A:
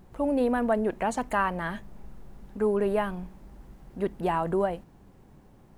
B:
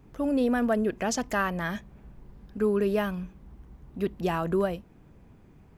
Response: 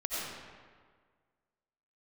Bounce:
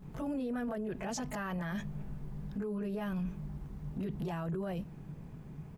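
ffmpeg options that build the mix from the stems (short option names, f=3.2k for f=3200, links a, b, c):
-filter_complex "[0:a]acompressor=threshold=-30dB:ratio=6,aecho=1:1:4.7:0.94,volume=-8dB[a];[1:a]alimiter=level_in=1.5dB:limit=-24dB:level=0:latency=1:release=101,volume=-1.5dB,volume=-1,adelay=22,volume=1dB[b];[a][b]amix=inputs=2:normalize=0,equalizer=f=150:w=3.1:g=13.5,alimiter=level_in=6dB:limit=-24dB:level=0:latency=1:release=13,volume=-6dB"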